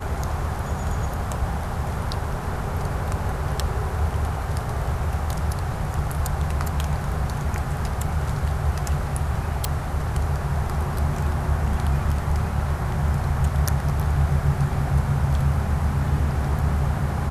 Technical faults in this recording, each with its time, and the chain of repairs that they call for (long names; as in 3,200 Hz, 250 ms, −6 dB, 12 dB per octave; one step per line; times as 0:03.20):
0:09.65: click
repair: click removal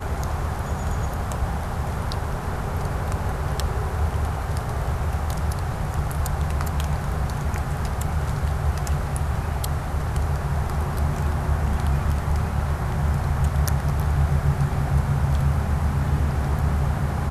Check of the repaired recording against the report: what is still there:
none of them is left